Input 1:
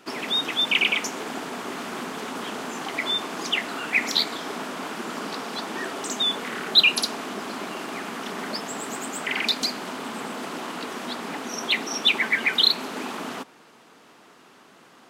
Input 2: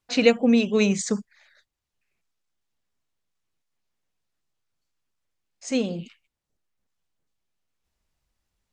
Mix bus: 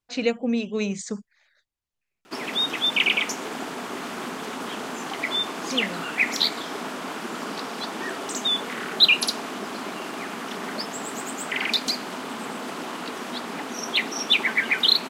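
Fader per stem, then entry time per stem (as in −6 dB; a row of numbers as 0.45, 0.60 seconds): 0.0, −6.0 decibels; 2.25, 0.00 seconds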